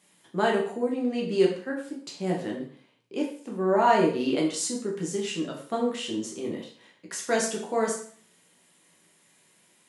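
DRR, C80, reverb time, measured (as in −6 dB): −2.0 dB, 10.0 dB, 0.50 s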